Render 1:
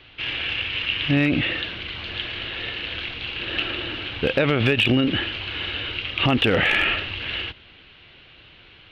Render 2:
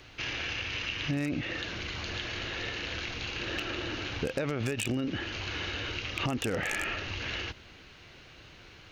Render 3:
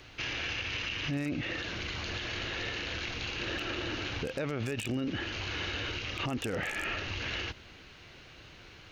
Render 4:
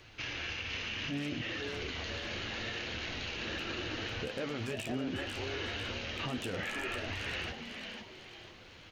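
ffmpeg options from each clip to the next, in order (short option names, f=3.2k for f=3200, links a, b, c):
-af "highshelf=f=4.8k:t=q:w=3:g=14,acompressor=threshold=-32dB:ratio=3"
-af "alimiter=level_in=1dB:limit=-24dB:level=0:latency=1:release=19,volume=-1dB"
-filter_complex "[0:a]flanger=delay=8.8:depth=4:regen=-39:speed=0.72:shape=sinusoidal,asplit=6[a][b][c][d][e][f];[b]adelay=499,afreqshift=140,volume=-6dB[g];[c]adelay=998,afreqshift=280,volume=-14.2dB[h];[d]adelay=1497,afreqshift=420,volume=-22.4dB[i];[e]adelay=1996,afreqshift=560,volume=-30.5dB[j];[f]adelay=2495,afreqshift=700,volume=-38.7dB[k];[a][g][h][i][j][k]amix=inputs=6:normalize=0"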